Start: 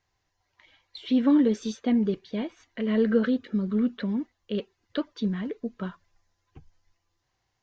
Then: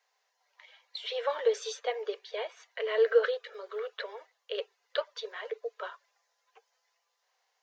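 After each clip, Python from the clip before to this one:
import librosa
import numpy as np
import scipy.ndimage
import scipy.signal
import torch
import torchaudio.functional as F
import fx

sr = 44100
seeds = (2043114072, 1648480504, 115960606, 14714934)

y = scipy.signal.sosfilt(scipy.signal.butter(16, 430.0, 'highpass', fs=sr, output='sos'), x)
y = F.gain(torch.from_numpy(y), 2.5).numpy()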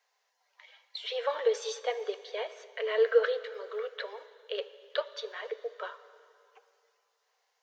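y = fx.rev_plate(x, sr, seeds[0], rt60_s=2.6, hf_ratio=0.95, predelay_ms=0, drr_db=13.5)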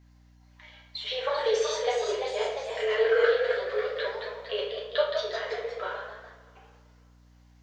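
y = fx.room_shoebox(x, sr, seeds[1], volume_m3=89.0, walls='mixed', distance_m=1.2)
y = fx.echo_pitch(y, sr, ms=447, semitones=1, count=3, db_per_echo=-6.0)
y = fx.add_hum(y, sr, base_hz=60, snr_db=27)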